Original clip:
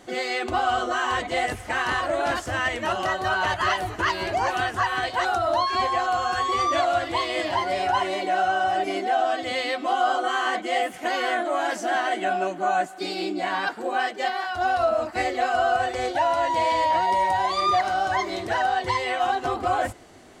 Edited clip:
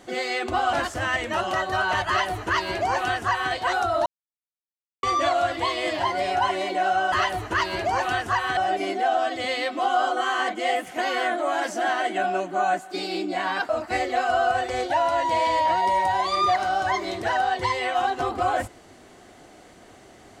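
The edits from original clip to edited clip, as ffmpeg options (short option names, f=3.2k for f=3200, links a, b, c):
-filter_complex "[0:a]asplit=7[a][b][c][d][e][f][g];[a]atrim=end=0.732[h];[b]atrim=start=2.248:end=5.58,asetpts=PTS-STARTPTS,afade=t=out:st=3.328:d=0.004:c=hsin[i];[c]atrim=start=5.58:end=6.55,asetpts=PTS-STARTPTS,volume=0[j];[d]atrim=start=6.55:end=8.642,asetpts=PTS-STARTPTS,afade=t=in:d=0.004:c=hsin[k];[e]atrim=start=3.598:end=5.052[l];[f]atrim=start=8.638:end=13.762[m];[g]atrim=start=14.938[n];[i][j][k]concat=n=3:v=0:a=1[o];[h][o]acrossfade=d=0.004:c1=hsin:c2=hsin[p];[p][l]acrossfade=d=0.004:c1=hsin:c2=hsin[q];[q][m]acrossfade=d=0.004:c1=hsin:c2=hsin[r];[r][n]acrossfade=d=0.004:c1=hsin:c2=hsin"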